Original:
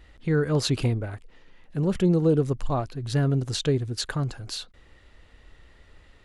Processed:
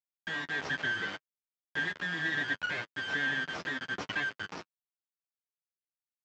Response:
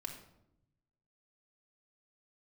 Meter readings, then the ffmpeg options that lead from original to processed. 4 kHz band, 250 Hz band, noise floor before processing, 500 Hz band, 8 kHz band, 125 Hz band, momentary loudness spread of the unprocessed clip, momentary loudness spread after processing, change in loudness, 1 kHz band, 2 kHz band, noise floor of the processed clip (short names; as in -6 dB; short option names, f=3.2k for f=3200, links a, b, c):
-4.5 dB, -18.0 dB, -55 dBFS, -19.0 dB, -15.5 dB, -24.5 dB, 14 LU, 8 LU, -7.5 dB, -5.0 dB, +10.0 dB, under -85 dBFS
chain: -af "afftfilt=real='real(if(lt(b,272),68*(eq(floor(b/68),0)*3+eq(floor(b/68),1)*0+eq(floor(b/68),2)*1+eq(floor(b/68),3)*2)+mod(b,68),b),0)':imag='imag(if(lt(b,272),68*(eq(floor(b/68),0)*3+eq(floor(b/68),1)*0+eq(floor(b/68),2)*1+eq(floor(b/68),3)*2)+mod(b,68),b),0)':win_size=2048:overlap=0.75,deesser=0.45,aecho=1:1:6.4:0.43,acompressor=threshold=-27dB:ratio=6,tremolo=f=1.2:d=0.46,afreqshift=-21,aresample=16000,acrusher=bits=3:dc=4:mix=0:aa=0.000001,aresample=44100,flanger=delay=9.6:depth=2.9:regen=-16:speed=0.7:shape=triangular,highpass=150,lowpass=2.3k,volume=8dB"